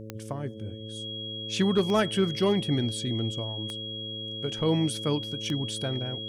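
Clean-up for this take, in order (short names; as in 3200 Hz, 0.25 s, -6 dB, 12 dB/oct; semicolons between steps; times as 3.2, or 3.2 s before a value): de-click; de-hum 109.1 Hz, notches 5; notch 3300 Hz, Q 30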